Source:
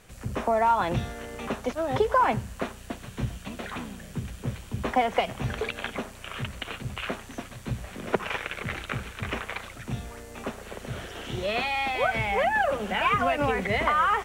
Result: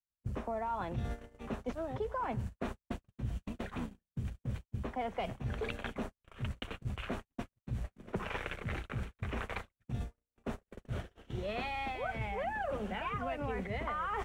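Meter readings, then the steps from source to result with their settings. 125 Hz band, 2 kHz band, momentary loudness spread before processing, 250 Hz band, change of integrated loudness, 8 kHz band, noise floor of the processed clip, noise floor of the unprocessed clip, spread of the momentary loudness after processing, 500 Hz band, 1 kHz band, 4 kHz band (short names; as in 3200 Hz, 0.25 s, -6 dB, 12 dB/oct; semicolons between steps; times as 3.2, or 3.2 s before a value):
-5.5 dB, -13.0 dB, 14 LU, -7.5 dB, -11.0 dB, -16.0 dB, under -85 dBFS, -45 dBFS, 7 LU, -11.0 dB, -13.0 dB, -13.5 dB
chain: gate -35 dBFS, range -58 dB; tilt -2 dB/oct; reverse; compressor 6:1, threshold -32 dBFS, peak gain reduction 15.5 dB; reverse; gain -2.5 dB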